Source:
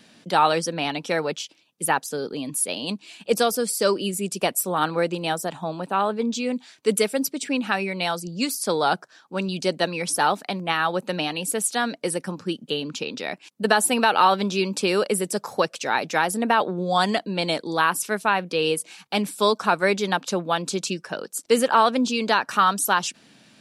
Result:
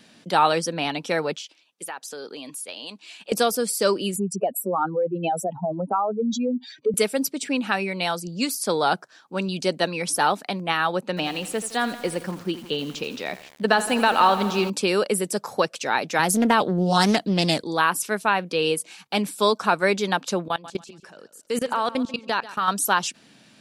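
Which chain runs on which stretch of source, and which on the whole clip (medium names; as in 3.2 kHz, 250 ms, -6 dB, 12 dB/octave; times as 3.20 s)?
1.37–3.32 s: frequency weighting A + compression 4:1, threshold -32 dBFS
4.16–6.94 s: spectral contrast enhancement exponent 2.8 + three bands compressed up and down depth 70%
11.01–14.70 s: distance through air 56 m + bit-crushed delay 83 ms, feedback 80%, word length 6-bit, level -13 dB
16.19–17.64 s: tone controls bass +10 dB, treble +8 dB + loudspeaker Doppler distortion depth 0.32 ms
20.48–22.68 s: level held to a coarse grid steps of 23 dB + feedback delay 140 ms, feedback 29%, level -16 dB
whole clip: none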